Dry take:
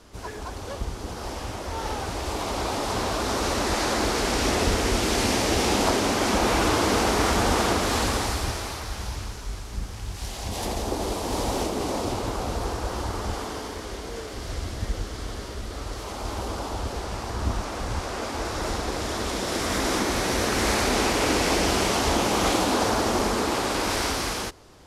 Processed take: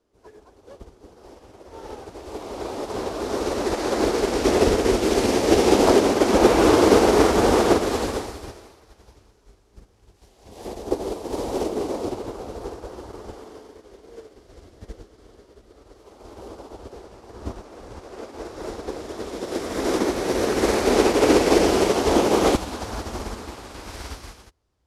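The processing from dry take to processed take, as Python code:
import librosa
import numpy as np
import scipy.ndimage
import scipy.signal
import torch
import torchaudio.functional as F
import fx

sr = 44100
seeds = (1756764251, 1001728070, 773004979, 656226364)

y = fx.peak_eq(x, sr, hz=fx.steps((0.0, 410.0), (22.55, 61.0)), db=11.5, octaves=1.5)
y = fx.upward_expand(y, sr, threshold_db=-32.0, expansion=2.5)
y = y * 10.0 ** (3.0 / 20.0)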